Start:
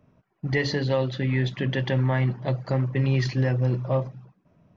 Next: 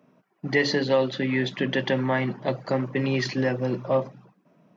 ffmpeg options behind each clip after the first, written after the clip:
ffmpeg -i in.wav -af "highpass=frequency=180:width=0.5412,highpass=frequency=180:width=1.3066,volume=3.5dB" out.wav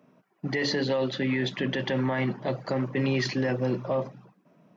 ffmpeg -i in.wav -af "alimiter=limit=-18.5dB:level=0:latency=1:release=13" out.wav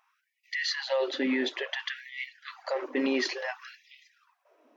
ffmpeg -i in.wav -af "afftfilt=real='re*gte(b*sr/1024,210*pow(1900/210,0.5+0.5*sin(2*PI*0.57*pts/sr)))':imag='im*gte(b*sr/1024,210*pow(1900/210,0.5+0.5*sin(2*PI*0.57*pts/sr)))':win_size=1024:overlap=0.75" out.wav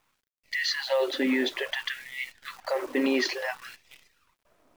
ffmpeg -i in.wav -af "acrusher=bits=9:dc=4:mix=0:aa=0.000001,volume=2.5dB" out.wav

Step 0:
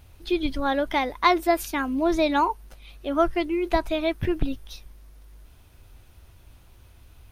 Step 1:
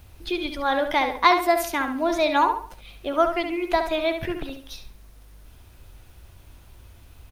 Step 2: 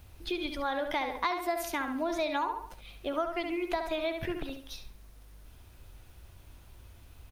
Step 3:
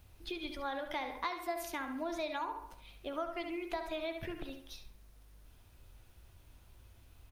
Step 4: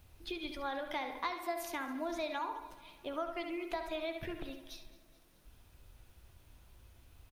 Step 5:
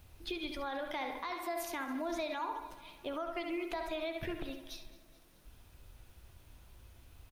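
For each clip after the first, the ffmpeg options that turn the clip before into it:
ffmpeg -i in.wav -filter_complex "[0:a]acrossover=split=450|3700[link_01][link_02][link_03];[link_01]acompressor=threshold=-35dB:ratio=6[link_04];[link_04][link_02][link_03]amix=inputs=3:normalize=0,acrusher=bits=10:mix=0:aa=0.000001,asplit=2[link_05][link_06];[link_06]adelay=70,lowpass=frequency=4200:poles=1,volume=-7dB,asplit=2[link_07][link_08];[link_08]adelay=70,lowpass=frequency=4200:poles=1,volume=0.35,asplit=2[link_09][link_10];[link_10]adelay=70,lowpass=frequency=4200:poles=1,volume=0.35,asplit=2[link_11][link_12];[link_12]adelay=70,lowpass=frequency=4200:poles=1,volume=0.35[link_13];[link_05][link_07][link_09][link_11][link_13]amix=inputs=5:normalize=0,volume=2.5dB" out.wav
ffmpeg -i in.wav -af "acompressor=threshold=-24dB:ratio=4,volume=-4.5dB" out.wav
ffmpeg -i in.wav -af "bandreject=frequency=71.44:width_type=h:width=4,bandreject=frequency=142.88:width_type=h:width=4,bandreject=frequency=214.32:width_type=h:width=4,bandreject=frequency=285.76:width_type=h:width=4,bandreject=frequency=357.2:width_type=h:width=4,bandreject=frequency=428.64:width_type=h:width=4,bandreject=frequency=500.08:width_type=h:width=4,bandreject=frequency=571.52:width_type=h:width=4,bandreject=frequency=642.96:width_type=h:width=4,bandreject=frequency=714.4:width_type=h:width=4,bandreject=frequency=785.84:width_type=h:width=4,bandreject=frequency=857.28:width_type=h:width=4,bandreject=frequency=928.72:width_type=h:width=4,bandreject=frequency=1000.16:width_type=h:width=4,bandreject=frequency=1071.6:width_type=h:width=4,bandreject=frequency=1143.04:width_type=h:width=4,bandreject=frequency=1214.48:width_type=h:width=4,bandreject=frequency=1285.92:width_type=h:width=4,bandreject=frequency=1357.36:width_type=h:width=4,bandreject=frequency=1428.8:width_type=h:width=4,bandreject=frequency=1500.24:width_type=h:width=4,bandreject=frequency=1571.68:width_type=h:width=4,bandreject=frequency=1643.12:width_type=h:width=4,bandreject=frequency=1714.56:width_type=h:width=4,bandreject=frequency=1786:width_type=h:width=4,bandreject=frequency=1857.44:width_type=h:width=4,bandreject=frequency=1928.88:width_type=h:width=4,bandreject=frequency=2000.32:width_type=h:width=4,bandreject=frequency=2071.76:width_type=h:width=4,bandreject=frequency=2143.2:width_type=h:width=4,bandreject=frequency=2214.64:width_type=h:width=4,bandreject=frequency=2286.08:width_type=h:width=4,bandreject=frequency=2357.52:width_type=h:width=4,bandreject=frequency=2428.96:width_type=h:width=4,volume=-6dB" out.wav
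ffmpeg -i in.wav -af "bandreject=frequency=50:width_type=h:width=6,bandreject=frequency=100:width_type=h:width=6,aecho=1:1:213|426|639|852|1065:0.112|0.0617|0.0339|0.0187|0.0103" out.wav
ffmpeg -i in.wav -af "alimiter=level_in=7dB:limit=-24dB:level=0:latency=1:release=74,volume=-7dB,volume=2.5dB" out.wav

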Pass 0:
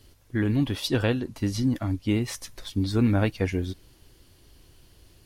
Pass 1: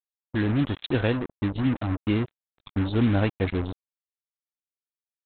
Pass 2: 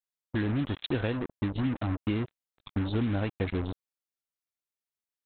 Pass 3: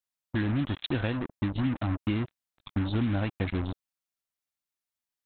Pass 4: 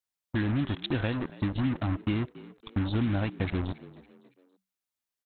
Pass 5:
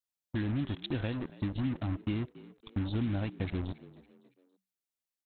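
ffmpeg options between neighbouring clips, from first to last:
ffmpeg -i in.wav -af "afftdn=noise_reduction=21:noise_floor=-38,aresample=8000,acrusher=bits=4:mix=0:aa=0.5,aresample=44100" out.wav
ffmpeg -i in.wav -af "acompressor=threshold=-24dB:ratio=6,volume=-1dB" out.wav
ffmpeg -i in.wav -af "equalizer=frequency=440:width_type=o:width=0.43:gain=-7.5,volume=1.5dB" out.wav
ffmpeg -i in.wav -filter_complex "[0:a]asplit=4[link_01][link_02][link_03][link_04];[link_02]adelay=279,afreqshift=63,volume=-19dB[link_05];[link_03]adelay=558,afreqshift=126,volume=-26.5dB[link_06];[link_04]adelay=837,afreqshift=189,volume=-34.1dB[link_07];[link_01][link_05][link_06][link_07]amix=inputs=4:normalize=0" out.wav
ffmpeg -i in.wav -af "equalizer=frequency=1300:width=0.71:gain=-4.5,volume=-4dB" out.wav

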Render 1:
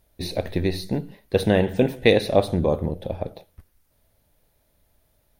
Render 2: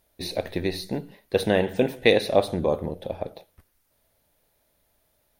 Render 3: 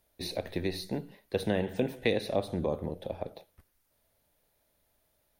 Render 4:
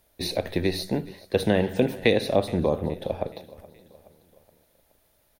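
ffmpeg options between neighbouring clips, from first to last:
ffmpeg -i in.wav -af "lowshelf=frequency=200:gain=-10" out.wav
ffmpeg -i in.wav -filter_complex "[0:a]acrossover=split=280[link_01][link_02];[link_02]acompressor=threshold=-27dB:ratio=2[link_03];[link_01][link_03]amix=inputs=2:normalize=0,volume=-4.5dB" out.wav
ffmpeg -i in.wav -af "aecho=1:1:422|844|1266|1688:0.0891|0.0463|0.0241|0.0125,volume=7.5dB" out.wav

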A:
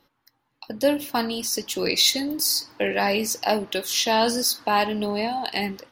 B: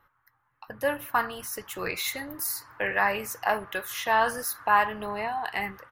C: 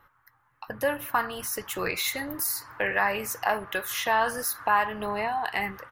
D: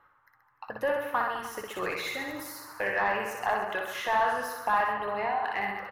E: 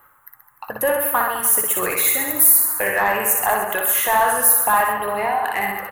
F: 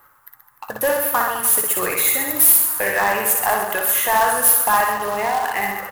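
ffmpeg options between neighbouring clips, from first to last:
ffmpeg -i in.wav -af "firequalizer=gain_entry='entry(110,0);entry(230,-17);entry(430,-10);entry(760,-5);entry(1200,6);entry(1700,3);entry(2500,-8);entry(4700,-22);entry(7200,-12);entry(12000,-5)':delay=0.05:min_phase=1,volume=1.5dB" out.wav
ffmpeg -i in.wav -af "acompressor=threshold=-35dB:ratio=1.5,volume=5dB" out.wav
ffmpeg -i in.wav -filter_complex "[0:a]aecho=1:1:60|129|208.4|299.6|404.5:0.631|0.398|0.251|0.158|0.1,asplit=2[link_01][link_02];[link_02]highpass=frequency=720:poles=1,volume=14dB,asoftclip=type=tanh:threshold=-5dB[link_03];[link_01][link_03]amix=inputs=2:normalize=0,lowpass=frequency=1100:poles=1,volume=-6dB,volume=-6.5dB" out.wav
ffmpeg -i in.wav -af "aexciter=amount=14.4:drive=5.1:freq=7600,volume=8.5dB" out.wav
ffmpeg -i in.wav -af "acrusher=bits=3:mode=log:mix=0:aa=0.000001" out.wav

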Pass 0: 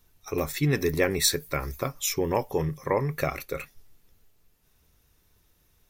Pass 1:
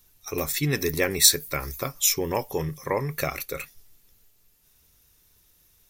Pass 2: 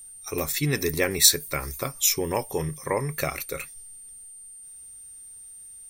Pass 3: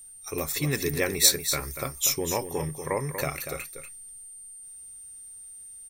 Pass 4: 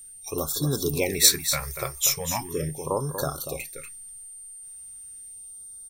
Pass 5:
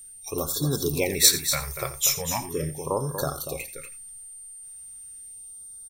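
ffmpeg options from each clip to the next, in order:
ffmpeg -i in.wav -af "highshelf=frequency=3000:gain=10.5,volume=-1.5dB" out.wav
ffmpeg -i in.wav -af "aeval=exprs='val(0)+0.00794*sin(2*PI*8900*n/s)':channel_layout=same" out.wav
ffmpeg -i in.wav -af "aecho=1:1:239:0.355,volume=-2.5dB" out.wav
ffmpeg -i in.wav -af "afftfilt=real='re*(1-between(b*sr/1024,230*pow(2400/230,0.5+0.5*sin(2*PI*0.39*pts/sr))/1.41,230*pow(2400/230,0.5+0.5*sin(2*PI*0.39*pts/sr))*1.41))':imag='im*(1-between(b*sr/1024,230*pow(2400/230,0.5+0.5*sin(2*PI*0.39*pts/sr))/1.41,230*pow(2400/230,0.5+0.5*sin(2*PI*0.39*pts/sr))*1.41))':win_size=1024:overlap=0.75,volume=2dB" out.wav
ffmpeg -i in.wav -af "aecho=1:1:86:0.188" out.wav

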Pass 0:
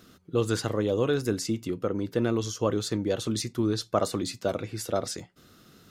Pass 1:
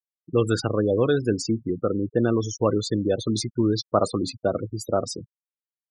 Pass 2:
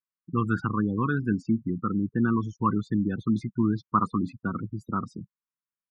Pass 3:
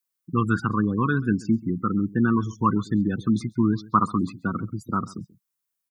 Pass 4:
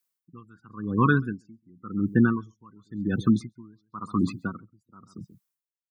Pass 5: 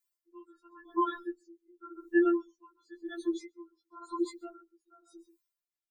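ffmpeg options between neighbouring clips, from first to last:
ffmpeg -i in.wav -af "afftfilt=real='re*gte(hypot(re,im),0.0316)':imag='im*gte(hypot(re,im),0.0316)':win_size=1024:overlap=0.75,volume=4.5dB" out.wav
ffmpeg -i in.wav -af "firequalizer=gain_entry='entry(110,0);entry(190,8);entry(610,-26);entry(1000,9);entry(4300,-22)':delay=0.05:min_phase=1,volume=-3dB" out.wav
ffmpeg -i in.wav -filter_complex "[0:a]crystalizer=i=2:c=0,asplit=2[link_01][link_02];[link_02]adelay=134.1,volume=-21dB,highshelf=frequency=4000:gain=-3.02[link_03];[link_01][link_03]amix=inputs=2:normalize=0,volume=3dB" out.wav
ffmpeg -i in.wav -af "aeval=exprs='val(0)*pow(10,-34*(0.5-0.5*cos(2*PI*0.93*n/s))/20)':channel_layout=same,volume=3.5dB" out.wav
ffmpeg -i in.wav -af "afftfilt=real='re*4*eq(mod(b,16),0)':imag='im*4*eq(mod(b,16),0)':win_size=2048:overlap=0.75,volume=-1.5dB" out.wav

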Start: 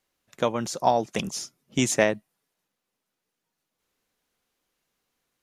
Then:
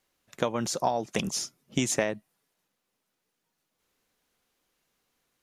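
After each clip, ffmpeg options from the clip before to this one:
ffmpeg -i in.wav -af "acompressor=threshold=-25dB:ratio=6,volume=2dB" out.wav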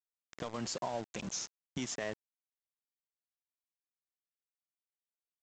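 ffmpeg -i in.wav -af "afftfilt=real='re*pow(10,6/40*sin(2*PI*(1.4*log(max(b,1)*sr/1024/100)/log(2)-(-0.67)*(pts-256)/sr)))':imag='im*pow(10,6/40*sin(2*PI*(1.4*log(max(b,1)*sr/1024/100)/log(2)-(-0.67)*(pts-256)/sr)))':win_size=1024:overlap=0.75,alimiter=limit=-22dB:level=0:latency=1:release=177,aresample=16000,aeval=exprs='val(0)*gte(abs(val(0)),0.0126)':channel_layout=same,aresample=44100,volume=-4.5dB" out.wav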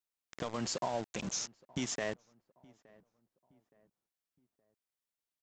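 ffmpeg -i in.wav -filter_complex "[0:a]asplit=2[link_01][link_02];[link_02]adelay=869,lowpass=frequency=1400:poles=1,volume=-24dB,asplit=2[link_03][link_04];[link_04]adelay=869,lowpass=frequency=1400:poles=1,volume=0.43,asplit=2[link_05][link_06];[link_06]adelay=869,lowpass=frequency=1400:poles=1,volume=0.43[link_07];[link_01][link_03][link_05][link_07]amix=inputs=4:normalize=0,volume=2dB" out.wav

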